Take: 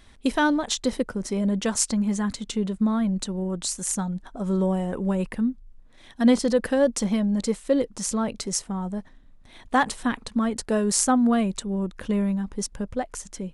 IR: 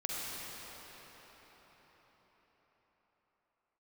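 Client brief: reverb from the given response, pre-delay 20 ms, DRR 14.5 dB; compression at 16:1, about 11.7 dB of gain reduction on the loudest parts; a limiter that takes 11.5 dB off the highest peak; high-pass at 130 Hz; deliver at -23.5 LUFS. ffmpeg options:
-filter_complex "[0:a]highpass=130,acompressor=threshold=0.0501:ratio=16,alimiter=limit=0.0708:level=0:latency=1,asplit=2[s0][s1];[1:a]atrim=start_sample=2205,adelay=20[s2];[s1][s2]afir=irnorm=-1:irlink=0,volume=0.112[s3];[s0][s3]amix=inputs=2:normalize=0,volume=2.66"

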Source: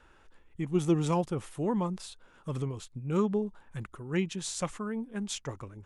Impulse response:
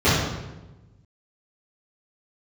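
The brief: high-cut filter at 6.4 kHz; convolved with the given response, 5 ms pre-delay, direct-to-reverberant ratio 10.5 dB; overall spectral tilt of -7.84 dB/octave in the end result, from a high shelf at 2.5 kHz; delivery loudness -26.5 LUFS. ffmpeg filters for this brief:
-filter_complex "[0:a]lowpass=6400,highshelf=f=2500:g=-6,asplit=2[s0][s1];[1:a]atrim=start_sample=2205,adelay=5[s2];[s1][s2]afir=irnorm=-1:irlink=0,volume=0.0224[s3];[s0][s3]amix=inputs=2:normalize=0,volume=1.78"

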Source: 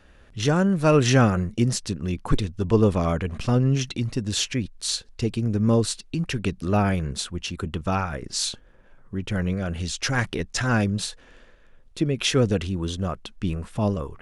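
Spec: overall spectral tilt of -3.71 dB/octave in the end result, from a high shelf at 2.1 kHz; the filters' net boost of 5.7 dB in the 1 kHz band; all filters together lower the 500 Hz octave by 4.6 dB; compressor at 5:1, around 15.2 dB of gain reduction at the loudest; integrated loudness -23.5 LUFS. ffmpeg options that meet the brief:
-af "equalizer=f=500:t=o:g=-8.5,equalizer=f=1000:t=o:g=8.5,highshelf=f=2100:g=6.5,acompressor=threshold=0.0316:ratio=5,volume=3.16"

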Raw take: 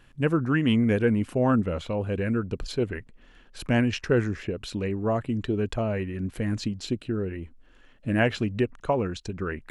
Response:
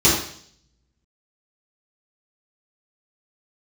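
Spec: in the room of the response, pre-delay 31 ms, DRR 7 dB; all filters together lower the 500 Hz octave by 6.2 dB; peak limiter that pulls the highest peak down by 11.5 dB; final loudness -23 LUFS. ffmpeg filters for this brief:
-filter_complex "[0:a]equalizer=f=500:t=o:g=-8,alimiter=limit=0.0631:level=0:latency=1,asplit=2[s0][s1];[1:a]atrim=start_sample=2205,adelay=31[s2];[s1][s2]afir=irnorm=-1:irlink=0,volume=0.0422[s3];[s0][s3]amix=inputs=2:normalize=0,volume=2.66"

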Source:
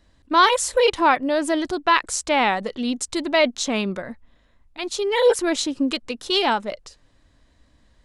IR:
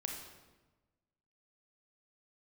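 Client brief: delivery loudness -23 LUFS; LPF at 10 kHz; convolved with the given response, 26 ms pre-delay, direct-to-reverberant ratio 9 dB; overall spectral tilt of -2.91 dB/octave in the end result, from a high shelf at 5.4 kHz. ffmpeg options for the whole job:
-filter_complex "[0:a]lowpass=10000,highshelf=f=5400:g=-5,asplit=2[s0][s1];[1:a]atrim=start_sample=2205,adelay=26[s2];[s1][s2]afir=irnorm=-1:irlink=0,volume=0.355[s3];[s0][s3]amix=inputs=2:normalize=0,volume=0.794"

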